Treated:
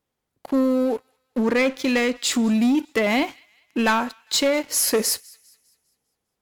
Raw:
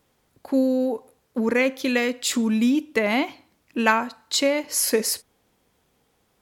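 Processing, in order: 1.42–2.32 LPF 9000 Hz 12 dB/oct; sample leveller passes 3; thin delay 0.201 s, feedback 42%, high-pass 1800 Hz, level -24 dB; gain -8 dB

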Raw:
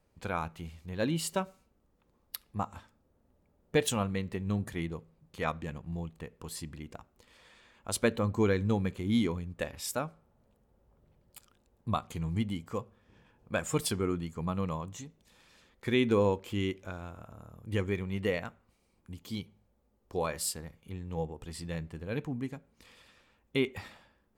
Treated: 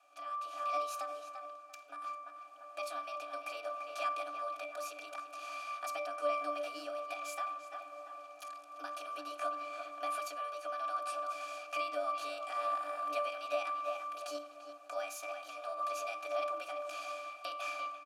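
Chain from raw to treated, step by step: per-bin compression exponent 0.6; comb 5.5 ms, depth 95%; darkening echo 0.461 s, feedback 42%, low-pass 2500 Hz, level -12 dB; compressor 6:1, threshold -29 dBFS, peak gain reduction 12 dB; bell 5800 Hz +12 dB 2.1 oct; speed mistake 33 rpm record played at 45 rpm; AGC gain up to 13 dB; inverse Chebyshev high-pass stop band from 200 Hz, stop band 60 dB; high shelf 4100 Hz +8.5 dB; octave resonator D, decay 0.66 s; gain +13.5 dB

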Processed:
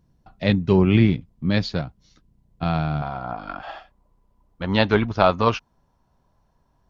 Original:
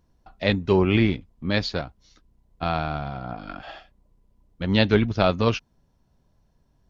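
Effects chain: bell 150 Hz +10 dB 1.3 oct, from 3.02 s 1000 Hz; gain -1.5 dB

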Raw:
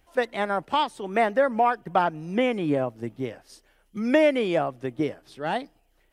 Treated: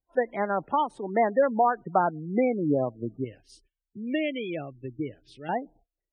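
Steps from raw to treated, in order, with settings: 3.24–5.49 EQ curve 120 Hz 0 dB, 190 Hz -9 dB, 310 Hz -5 dB, 1000 Hz -17 dB, 2800 Hz +4 dB; gate -55 dBFS, range -24 dB; high shelf 2500 Hz -9 dB; spectral gate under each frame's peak -20 dB strong

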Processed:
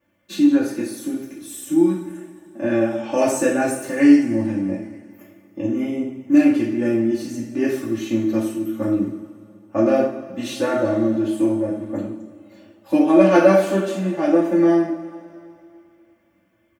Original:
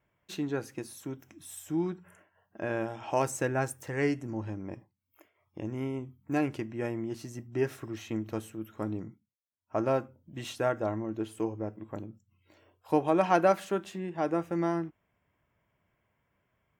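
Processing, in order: HPF 89 Hz; bell 200 Hz +4.5 dB 1.3 oct; notch 930 Hz, Q 9.1; comb 3.4 ms, depth 82%; two-slope reverb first 0.53 s, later 2.6 s, from -17 dB, DRR -7 dB

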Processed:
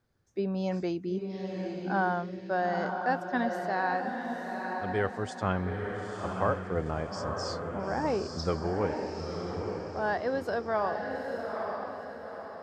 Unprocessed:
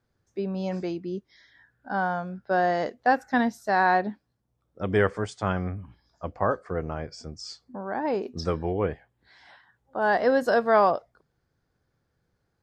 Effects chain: vocal rider within 5 dB 0.5 s; diffused feedback echo 0.906 s, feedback 43%, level -4 dB; gain -5.5 dB

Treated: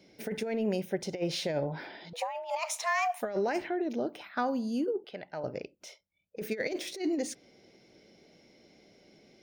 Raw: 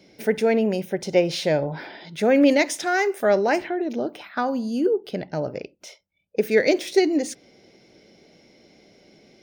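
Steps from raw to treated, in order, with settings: negative-ratio compressor -21 dBFS, ratio -0.5; 2.13–3.22 frequency shift +330 Hz; 5.04–5.44 three-band isolator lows -13 dB, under 600 Hz, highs -17 dB, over 4200 Hz; gain -8.5 dB

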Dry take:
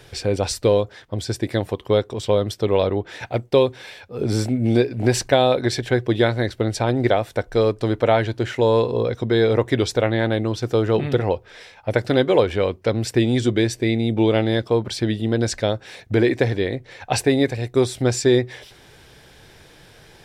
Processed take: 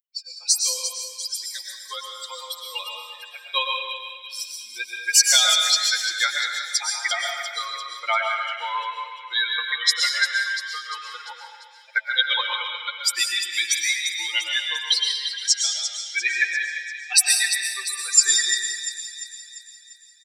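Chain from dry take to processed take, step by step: per-bin expansion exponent 3; HPF 1300 Hz 24 dB/oct; high shelf 3500 Hz +9 dB; comb 5.7 ms, depth 85%; AGC gain up to 10 dB; split-band echo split 1900 Hz, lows 0.122 s, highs 0.346 s, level -9.5 dB; reverb RT60 1.1 s, pre-delay 78 ms, DRR 1 dB

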